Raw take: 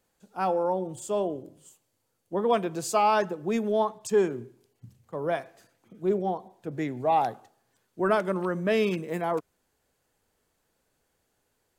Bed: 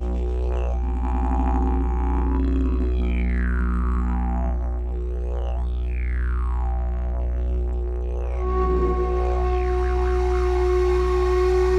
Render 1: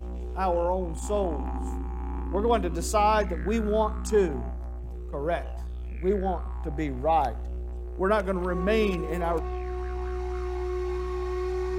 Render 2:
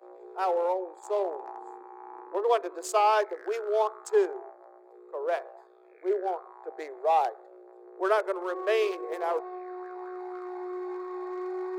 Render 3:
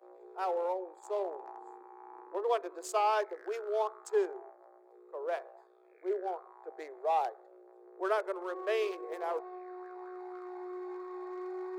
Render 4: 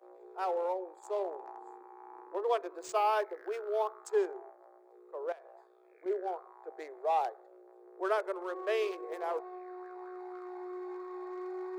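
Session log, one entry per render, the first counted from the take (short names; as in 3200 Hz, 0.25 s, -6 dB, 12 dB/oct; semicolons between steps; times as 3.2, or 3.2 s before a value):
add bed -10.5 dB
Wiener smoothing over 15 samples; steep high-pass 370 Hz 72 dB/oct
gain -6 dB
2.67–3.97 decimation joined by straight lines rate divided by 3×; 5.32–6.06 compressor, threshold -48 dBFS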